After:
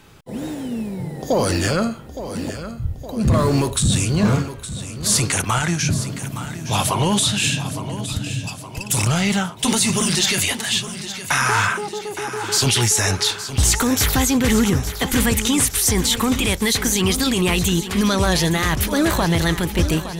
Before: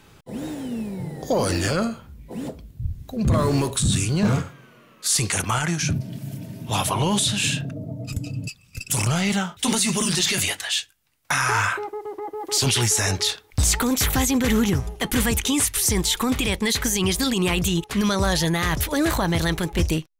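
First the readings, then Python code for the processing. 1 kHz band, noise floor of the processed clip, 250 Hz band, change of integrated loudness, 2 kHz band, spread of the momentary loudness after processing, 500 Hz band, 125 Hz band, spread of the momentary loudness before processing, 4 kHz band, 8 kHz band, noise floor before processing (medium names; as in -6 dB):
+3.5 dB, -34 dBFS, +3.5 dB, +3.0 dB, +3.5 dB, 12 LU, +3.5 dB, +3.5 dB, 13 LU, +3.5 dB, +3.5 dB, -53 dBFS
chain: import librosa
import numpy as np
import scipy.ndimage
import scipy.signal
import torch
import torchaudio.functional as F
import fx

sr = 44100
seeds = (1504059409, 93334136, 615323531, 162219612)

y = fx.echo_feedback(x, sr, ms=865, feedback_pct=54, wet_db=-12)
y = y * 10.0 ** (3.0 / 20.0)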